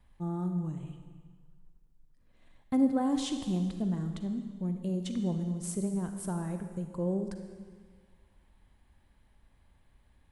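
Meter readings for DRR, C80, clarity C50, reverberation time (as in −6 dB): 6.5 dB, 8.5 dB, 7.0 dB, 1.6 s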